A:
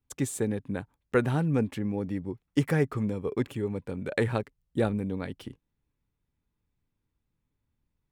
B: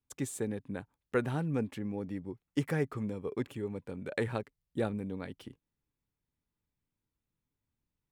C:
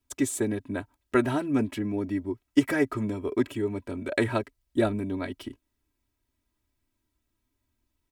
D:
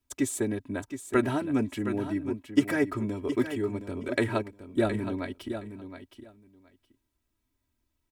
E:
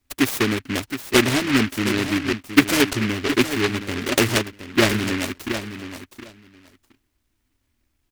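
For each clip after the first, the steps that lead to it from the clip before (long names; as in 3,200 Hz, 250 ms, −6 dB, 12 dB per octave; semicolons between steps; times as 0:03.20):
low-shelf EQ 86 Hz −6 dB; level −5.5 dB
comb filter 3.1 ms, depth 91%; level +6.5 dB
repeating echo 718 ms, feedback 16%, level −10 dB; level −1.5 dB
short delay modulated by noise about 1,900 Hz, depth 0.27 ms; level +8 dB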